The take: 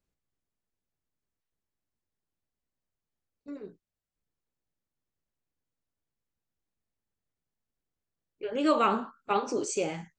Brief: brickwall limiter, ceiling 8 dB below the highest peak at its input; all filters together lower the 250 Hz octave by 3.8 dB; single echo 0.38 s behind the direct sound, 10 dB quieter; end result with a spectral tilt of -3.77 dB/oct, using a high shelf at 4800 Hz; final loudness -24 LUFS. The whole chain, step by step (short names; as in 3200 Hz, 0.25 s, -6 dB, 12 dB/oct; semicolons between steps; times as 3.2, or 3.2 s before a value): bell 250 Hz -5 dB; high shelf 4800 Hz -4.5 dB; limiter -22 dBFS; echo 0.38 s -10 dB; gain +9.5 dB